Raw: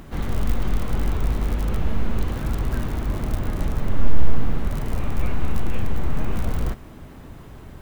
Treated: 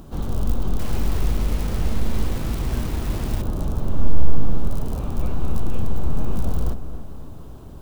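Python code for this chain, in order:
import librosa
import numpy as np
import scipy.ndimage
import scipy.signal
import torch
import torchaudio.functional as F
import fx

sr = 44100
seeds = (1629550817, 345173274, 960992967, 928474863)

y = fx.peak_eq(x, sr, hz=2000.0, db=-15.0, octaves=0.81)
y = fx.echo_bbd(y, sr, ms=272, stages=4096, feedback_pct=49, wet_db=-11.5)
y = fx.quant_dither(y, sr, seeds[0], bits=6, dither='none', at=(0.79, 3.42))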